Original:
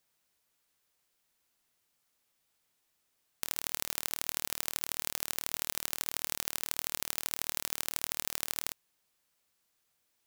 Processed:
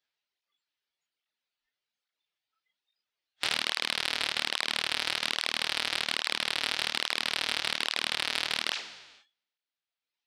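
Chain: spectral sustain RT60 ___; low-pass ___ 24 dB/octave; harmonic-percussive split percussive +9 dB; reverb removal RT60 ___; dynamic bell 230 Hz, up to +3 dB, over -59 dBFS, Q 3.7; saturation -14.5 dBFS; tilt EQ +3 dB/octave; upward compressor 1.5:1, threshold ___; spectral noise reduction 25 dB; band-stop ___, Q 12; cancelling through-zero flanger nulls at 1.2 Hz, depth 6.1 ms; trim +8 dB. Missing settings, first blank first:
1.28 s, 4.2 kHz, 1.7 s, -52 dBFS, 1.1 kHz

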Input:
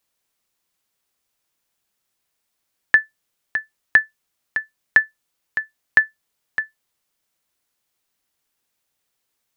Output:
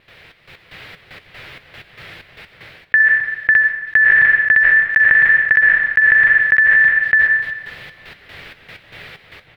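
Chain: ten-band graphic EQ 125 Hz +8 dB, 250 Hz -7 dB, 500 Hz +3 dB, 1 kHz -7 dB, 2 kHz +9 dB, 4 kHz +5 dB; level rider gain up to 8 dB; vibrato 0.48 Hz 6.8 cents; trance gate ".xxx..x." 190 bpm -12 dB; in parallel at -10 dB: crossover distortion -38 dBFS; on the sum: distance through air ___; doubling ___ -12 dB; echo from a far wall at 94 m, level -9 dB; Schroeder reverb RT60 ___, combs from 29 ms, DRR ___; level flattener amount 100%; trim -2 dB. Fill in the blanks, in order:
450 m, 12 ms, 1.3 s, 19.5 dB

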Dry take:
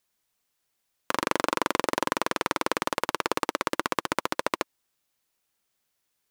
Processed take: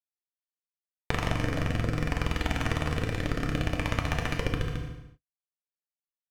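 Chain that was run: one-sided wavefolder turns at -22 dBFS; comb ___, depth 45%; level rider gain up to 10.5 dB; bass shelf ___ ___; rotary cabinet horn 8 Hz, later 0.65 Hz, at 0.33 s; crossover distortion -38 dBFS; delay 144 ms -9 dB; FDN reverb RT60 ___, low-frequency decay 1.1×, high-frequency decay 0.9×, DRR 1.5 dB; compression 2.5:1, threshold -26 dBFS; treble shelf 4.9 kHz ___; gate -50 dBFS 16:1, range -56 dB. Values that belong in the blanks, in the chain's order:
1.7 ms, 170 Hz, +6 dB, 0.86 s, -10.5 dB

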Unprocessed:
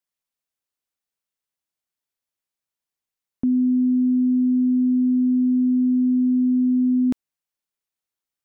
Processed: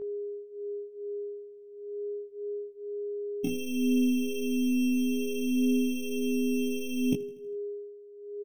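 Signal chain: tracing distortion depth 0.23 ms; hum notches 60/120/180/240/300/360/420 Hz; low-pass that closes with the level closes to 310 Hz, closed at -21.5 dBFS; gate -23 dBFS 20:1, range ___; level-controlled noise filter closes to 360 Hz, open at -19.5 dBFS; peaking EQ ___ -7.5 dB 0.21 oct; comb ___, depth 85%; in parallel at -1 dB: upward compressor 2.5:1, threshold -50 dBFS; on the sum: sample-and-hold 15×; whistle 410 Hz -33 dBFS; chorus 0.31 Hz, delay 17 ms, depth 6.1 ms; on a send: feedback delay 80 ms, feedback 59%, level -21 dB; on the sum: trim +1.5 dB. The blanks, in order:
-27 dB, 250 Hz, 6.4 ms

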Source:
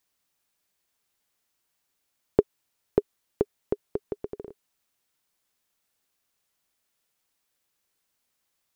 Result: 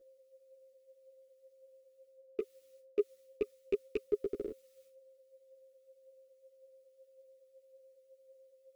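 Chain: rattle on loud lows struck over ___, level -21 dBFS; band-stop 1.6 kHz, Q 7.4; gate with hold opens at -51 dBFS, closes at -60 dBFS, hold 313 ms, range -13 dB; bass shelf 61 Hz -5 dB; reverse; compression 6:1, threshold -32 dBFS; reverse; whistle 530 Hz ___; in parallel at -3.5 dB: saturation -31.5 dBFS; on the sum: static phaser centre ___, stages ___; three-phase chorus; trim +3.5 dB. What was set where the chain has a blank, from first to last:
-25 dBFS, -61 dBFS, 350 Hz, 4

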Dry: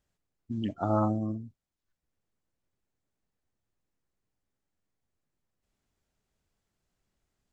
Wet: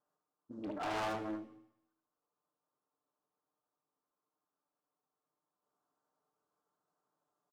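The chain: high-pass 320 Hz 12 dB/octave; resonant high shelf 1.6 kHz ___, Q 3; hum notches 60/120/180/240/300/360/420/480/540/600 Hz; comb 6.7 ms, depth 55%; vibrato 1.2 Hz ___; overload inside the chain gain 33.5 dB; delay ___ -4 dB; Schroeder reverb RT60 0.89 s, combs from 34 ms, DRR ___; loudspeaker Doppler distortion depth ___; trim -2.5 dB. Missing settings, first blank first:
-11 dB, 20 cents, 75 ms, 13 dB, 0.46 ms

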